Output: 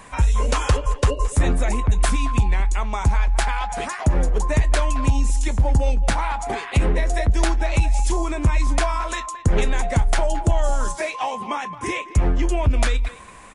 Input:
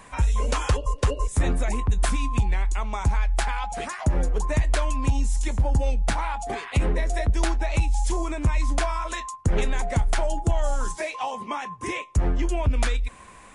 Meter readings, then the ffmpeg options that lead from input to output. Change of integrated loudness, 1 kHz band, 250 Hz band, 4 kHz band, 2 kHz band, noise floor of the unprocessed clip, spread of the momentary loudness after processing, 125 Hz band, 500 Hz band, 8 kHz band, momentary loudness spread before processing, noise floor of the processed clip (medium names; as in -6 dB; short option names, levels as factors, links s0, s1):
+4.0 dB, +4.0 dB, +4.0 dB, +4.0 dB, +4.0 dB, -46 dBFS, 5 LU, +4.0 dB, +4.0 dB, +4.0 dB, 5 LU, -39 dBFS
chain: -filter_complex "[0:a]asplit=2[s0][s1];[s1]adelay=220,highpass=300,lowpass=3400,asoftclip=type=hard:threshold=0.0794,volume=0.2[s2];[s0][s2]amix=inputs=2:normalize=0,volume=1.58"